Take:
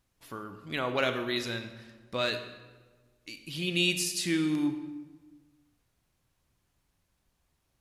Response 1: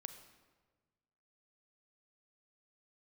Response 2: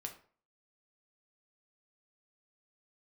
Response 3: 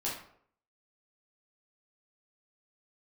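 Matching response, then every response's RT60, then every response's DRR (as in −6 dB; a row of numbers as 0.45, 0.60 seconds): 1; 1.4, 0.45, 0.65 seconds; 8.5, 3.0, −7.0 decibels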